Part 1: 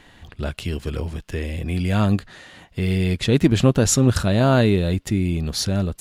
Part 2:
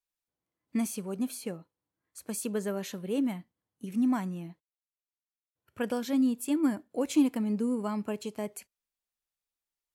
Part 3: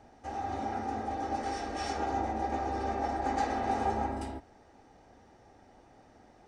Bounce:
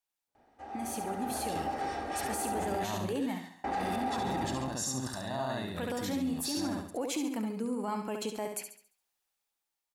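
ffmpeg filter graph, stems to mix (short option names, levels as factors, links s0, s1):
-filter_complex "[0:a]highpass=f=280:p=1,equalizer=f=2600:t=o:w=0.57:g=-10,aecho=1:1:1.1:0.7,adelay=900,volume=0.158,asplit=2[s0][s1];[s1]volume=0.422[s2];[1:a]acompressor=threshold=0.00891:ratio=2,volume=1.12,asplit=3[s3][s4][s5];[s4]volume=0.398[s6];[2:a]equalizer=f=6100:t=o:w=0.78:g=-9,adelay=350,volume=0.473,asplit=3[s7][s8][s9];[s7]atrim=end=2.85,asetpts=PTS-STARTPTS,afade=t=out:st=2.846:d=0.004:c=hsin[s10];[s8]atrim=start=2.85:end=3.64,asetpts=PTS-STARTPTS,volume=0[s11];[s9]atrim=start=3.64,asetpts=PTS-STARTPTS,afade=t=in:d=0.004:c=hsin[s12];[s10][s11][s12]concat=n=3:v=0:a=1[s13];[s5]apad=whole_len=304681[s14];[s0][s14]sidechaingate=range=0.355:threshold=0.002:ratio=16:detection=peak[s15];[s15][s3]amix=inputs=2:normalize=0,equalizer=f=820:w=4.4:g=7,acompressor=threshold=0.0178:ratio=6,volume=1[s16];[s2][s6]amix=inputs=2:normalize=0,aecho=0:1:69|138|207|276|345|414:1|0.4|0.16|0.064|0.0256|0.0102[s17];[s13][s16][s17]amix=inputs=3:normalize=0,lowshelf=f=220:g=-9,dynaudnorm=f=180:g=13:m=2.51,alimiter=level_in=1.12:limit=0.0631:level=0:latency=1:release=12,volume=0.891"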